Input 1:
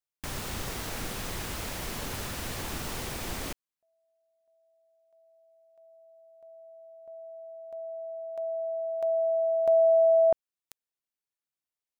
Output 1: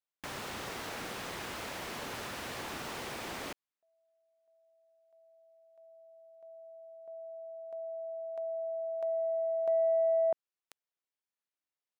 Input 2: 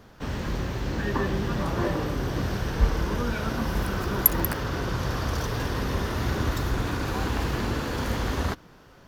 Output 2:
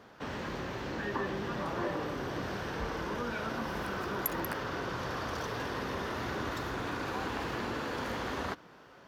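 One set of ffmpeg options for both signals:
-filter_complex "[0:a]highpass=f=390:p=1,highshelf=f=5200:g=-11.5,asplit=2[s0][s1];[s1]acompressor=threshold=0.00708:ratio=6:attack=65:release=29,volume=1.41[s2];[s0][s2]amix=inputs=2:normalize=0,asoftclip=type=tanh:threshold=0.422,volume=0.447"

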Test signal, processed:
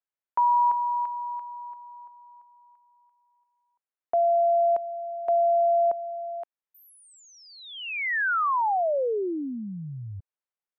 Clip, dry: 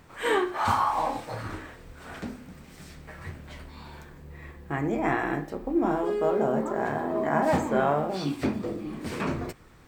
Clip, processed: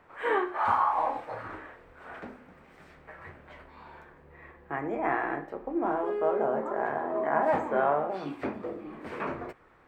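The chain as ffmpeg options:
-filter_complex "[0:a]acrossover=split=2500[s0][s1];[s1]acompressor=threshold=0.0158:ratio=4:attack=1:release=60[s2];[s0][s2]amix=inputs=2:normalize=0,acrossover=split=370 2400:gain=0.224 1 0.1[s3][s4][s5];[s3][s4][s5]amix=inputs=3:normalize=0"

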